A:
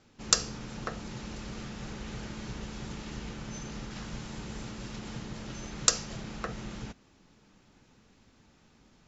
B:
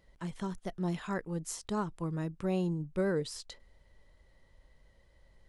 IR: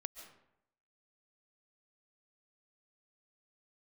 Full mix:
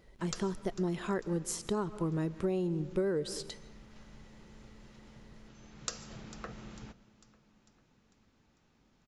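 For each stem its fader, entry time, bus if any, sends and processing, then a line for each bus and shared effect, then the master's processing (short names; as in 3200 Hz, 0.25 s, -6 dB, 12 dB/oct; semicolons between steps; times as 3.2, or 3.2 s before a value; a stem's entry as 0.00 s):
-9.5 dB, 0.00 s, send -7.5 dB, echo send -19 dB, high shelf 5400 Hz -5.5 dB; auto duck -15 dB, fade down 0.50 s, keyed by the second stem
0.0 dB, 0.00 s, send -4.5 dB, no echo send, bell 380 Hz +7.5 dB 0.58 oct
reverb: on, RT60 0.80 s, pre-delay 0.1 s
echo: feedback echo 0.448 s, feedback 52%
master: compressor 10:1, threshold -28 dBFS, peak gain reduction 9 dB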